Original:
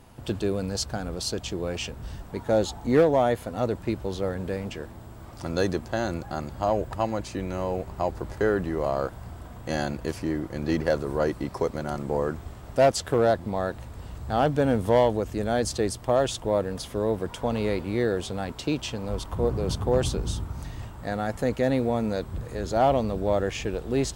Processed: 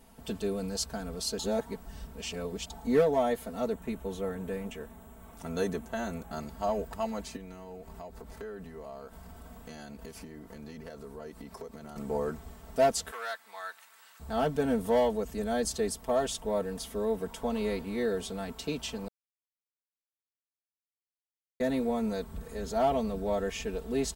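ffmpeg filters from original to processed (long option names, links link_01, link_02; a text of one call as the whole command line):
ffmpeg -i in.wav -filter_complex "[0:a]asettb=1/sr,asplit=3[link_01][link_02][link_03];[link_01]atrim=end=3.734[link_04];[link_02]atrim=start=3.73:end=6.32,asetpts=PTS-STARTPTS,afade=type=in:duration=0.004:curve=qsin,afade=type=out:start_time=2.586:duration=0.004:curve=qsin,equalizer=frequency=4800:width_type=o:width=0.41:gain=-12.5[link_05];[link_03]atrim=start=6.316[link_06];[link_04][link_05]acrossfade=duration=0.004:curve1=hsin:curve2=qsin[link_07];[link_07][link_06]acrossfade=duration=0.004:curve1=qsin:curve2=hsin,asettb=1/sr,asplit=3[link_08][link_09][link_10];[link_08]atrim=end=7.364[link_11];[link_09]atrim=start=7.36:end=11.96,asetpts=PTS-STARTPTS,afade=type=in:duration=0.004:curve=qsin,afade=type=out:start_time=4.596:duration=0.004:curve=qsin,acompressor=threshold=-35dB:ratio=4:attack=3.2:release=140:knee=1:detection=peak[link_12];[link_10]atrim=start=11.956[link_13];[link_11][link_12]acrossfade=duration=0.004:curve1=hsin:curve2=qsin[link_14];[link_14][link_13]acrossfade=duration=0.004:curve1=qsin:curve2=hsin,asettb=1/sr,asplit=3[link_15][link_16][link_17];[link_15]atrim=end=13.114[link_18];[link_16]atrim=start=13.11:end=14.2,asetpts=PTS-STARTPTS,afade=type=in:duration=0.004:curve=qsin,afade=type=out:start_time=1.086:duration=0.004:curve=qsin,highpass=frequency=1500:width_type=q:width=1.5[link_19];[link_17]atrim=start=14.196[link_20];[link_18][link_19]acrossfade=duration=0.004:curve1=hsin:curve2=qsin[link_21];[link_21][link_20]acrossfade=duration=0.004:curve1=qsin:curve2=hsin,asplit=5[link_22][link_23][link_24][link_25][link_26];[link_22]atrim=end=1.392[link_27];[link_23]atrim=start=1.388:end=2.702,asetpts=PTS-STARTPTS,areverse[link_28];[link_24]atrim=start=2.698:end=19.08,asetpts=PTS-STARTPTS,afade=type=out:start_time=16.378:duration=0.004:curve=hsin[link_29];[link_25]atrim=start=19.08:end=21.6,asetpts=PTS-STARTPTS,volume=0[link_30];[link_26]atrim=start=21.6,asetpts=PTS-STARTPTS,afade=type=in:duration=0.004:curve=hsin[link_31];[link_27][link_28]acrossfade=duration=0.004:curve1=hsin:curve2=hsin[link_32];[link_29][link_30][link_31]concat=n=3:v=0:a=1[link_33];[link_32][link_33]acrossfade=duration=0.004:curve1=hsin:curve2=hsin,highshelf=frequency=10000:gain=12,aecho=1:1:4.5:0.96,volume=-8.5dB" out.wav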